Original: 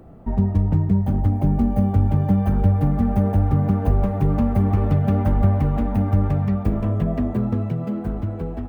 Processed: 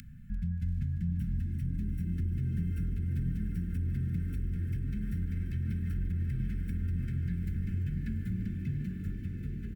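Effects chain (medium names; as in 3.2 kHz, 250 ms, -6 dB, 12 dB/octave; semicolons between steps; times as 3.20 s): feedback comb 580 Hz, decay 0.2 s, harmonics all, mix 60%; upward compressor, threshold -35 dBFS; echo that smears into a reverb 698 ms, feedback 44%, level -7 dB; tape speed -11%; comb 2.3 ms, depth 44%; peak limiter -21 dBFS, peak gain reduction 10.5 dB; Chebyshev band-stop 240–1500 Hz, order 5; bass shelf 120 Hz -5.5 dB; frequency-shifting echo 344 ms, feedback 60%, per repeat +53 Hz, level -14.5 dB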